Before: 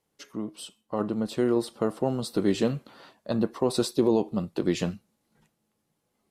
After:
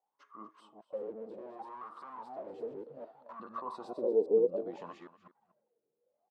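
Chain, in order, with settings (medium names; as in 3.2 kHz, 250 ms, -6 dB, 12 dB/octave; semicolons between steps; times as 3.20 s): chunks repeated in reverse 203 ms, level -4 dB; dynamic bell 250 Hz, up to +5 dB, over -35 dBFS, Q 1.1; peak limiter -16 dBFS, peak gain reduction 10 dB; 0.79–3.40 s: overload inside the chain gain 33.5 dB; wah-wah 0.64 Hz 440–1200 Hz, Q 12; delay 241 ms -16 dB; trim +7.5 dB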